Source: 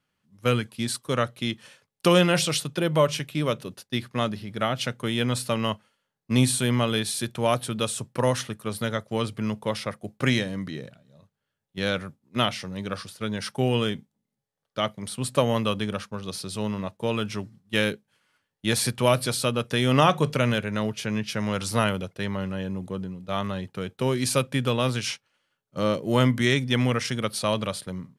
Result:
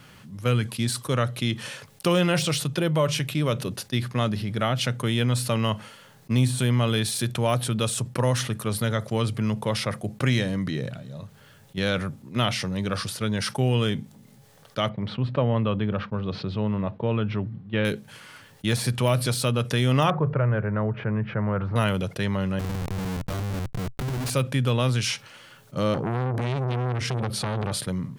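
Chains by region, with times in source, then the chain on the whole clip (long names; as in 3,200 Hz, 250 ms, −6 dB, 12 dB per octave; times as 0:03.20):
0:14.89–0:17.85: low-pass filter 3,700 Hz 24 dB per octave + high-shelf EQ 2,400 Hz −11.5 dB
0:20.10–0:21.76: low-pass filter 1,600 Hz 24 dB per octave + parametric band 250 Hz −13.5 dB 0.24 octaves
0:22.59–0:24.30: downward compressor 4 to 1, threshold −31 dBFS + comparator with hysteresis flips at −37 dBFS
0:25.94–0:27.72: spectral tilt −2.5 dB per octave + downward compressor 10 to 1, threshold −22 dBFS + saturating transformer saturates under 1,100 Hz
whole clip: de-essing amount 55%; parametric band 120 Hz +6.5 dB 0.65 octaves; envelope flattener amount 50%; level −5 dB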